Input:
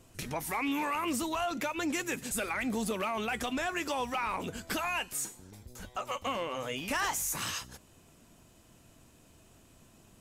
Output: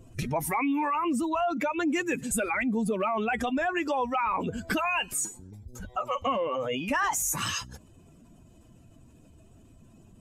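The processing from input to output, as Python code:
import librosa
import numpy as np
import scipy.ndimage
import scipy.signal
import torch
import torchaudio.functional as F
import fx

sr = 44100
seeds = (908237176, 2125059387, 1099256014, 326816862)

p1 = fx.spec_expand(x, sr, power=1.7)
p2 = fx.rider(p1, sr, range_db=10, speed_s=0.5)
y = p1 + F.gain(torch.from_numpy(p2), -0.5).numpy()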